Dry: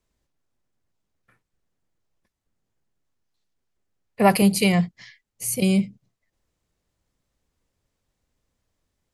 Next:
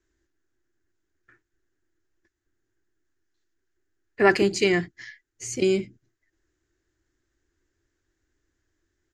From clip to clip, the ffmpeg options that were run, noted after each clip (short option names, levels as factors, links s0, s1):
-af "firequalizer=gain_entry='entry(100,0);entry(190,-12);entry(340,13);entry(490,-7);entry(1100,-5);entry(1600,10);entry(2300,-2);entry(4300,-3);entry(7000,3);entry(10000,-28)':delay=0.05:min_phase=1"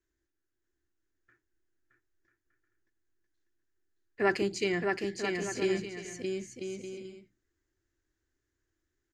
-af "aecho=1:1:620|992|1215|1349|1429:0.631|0.398|0.251|0.158|0.1,volume=0.355"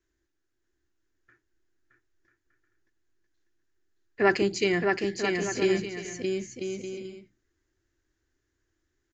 -af "aresample=16000,aresample=44100,volume=1.78"